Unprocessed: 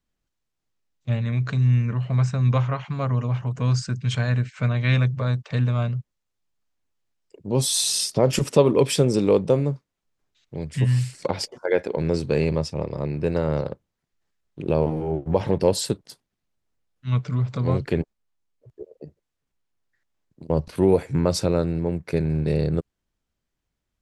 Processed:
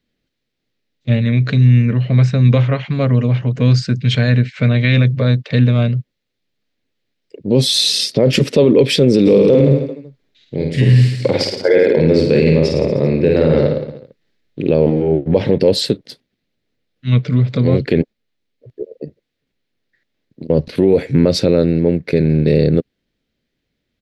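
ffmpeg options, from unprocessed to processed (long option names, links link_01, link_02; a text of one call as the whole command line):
ffmpeg -i in.wav -filter_complex "[0:a]asplit=3[link_01][link_02][link_03];[link_01]afade=type=out:start_time=9.25:duration=0.02[link_04];[link_02]aecho=1:1:50|105|165.5|232|305.3|385.8:0.631|0.398|0.251|0.158|0.1|0.0631,afade=type=in:start_time=9.25:duration=0.02,afade=type=out:start_time=14.69:duration=0.02[link_05];[link_03]afade=type=in:start_time=14.69:duration=0.02[link_06];[link_04][link_05][link_06]amix=inputs=3:normalize=0,equalizer=frequency=125:width_type=o:width=1:gain=5,equalizer=frequency=250:width_type=o:width=1:gain=10,equalizer=frequency=500:width_type=o:width=1:gain=10,equalizer=frequency=1000:width_type=o:width=1:gain=-6,equalizer=frequency=2000:width_type=o:width=1:gain=9,equalizer=frequency=4000:width_type=o:width=1:gain=11,equalizer=frequency=8000:width_type=o:width=1:gain=-6,alimiter=limit=-4.5dB:level=0:latency=1:release=24,volume=1.5dB" out.wav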